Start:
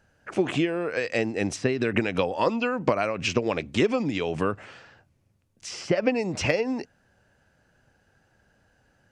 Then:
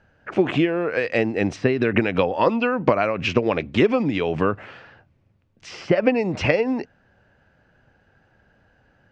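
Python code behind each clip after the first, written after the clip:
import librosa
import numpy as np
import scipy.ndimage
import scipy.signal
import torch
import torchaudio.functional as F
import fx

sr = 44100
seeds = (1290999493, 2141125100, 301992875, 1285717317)

y = scipy.signal.sosfilt(scipy.signal.butter(2, 3200.0, 'lowpass', fs=sr, output='sos'), x)
y = y * librosa.db_to_amplitude(5.0)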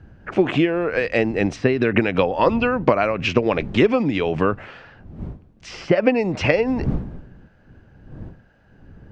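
y = fx.dmg_wind(x, sr, seeds[0], corner_hz=160.0, level_db=-37.0)
y = y * librosa.db_to_amplitude(1.5)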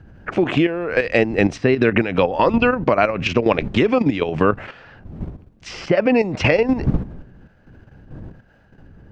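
y = fx.level_steps(x, sr, step_db=10)
y = y * librosa.db_to_amplitude(6.0)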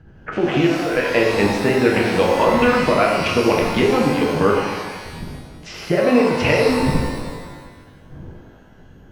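y = fx.rev_shimmer(x, sr, seeds[1], rt60_s=1.4, semitones=12, shimmer_db=-8, drr_db=-2.0)
y = y * librosa.db_to_amplitude(-3.5)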